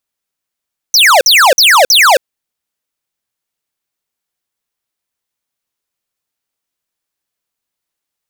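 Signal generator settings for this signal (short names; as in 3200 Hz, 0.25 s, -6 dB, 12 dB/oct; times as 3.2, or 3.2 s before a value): burst of laser zaps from 6300 Hz, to 480 Hz, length 0.27 s square, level -6 dB, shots 4, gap 0.05 s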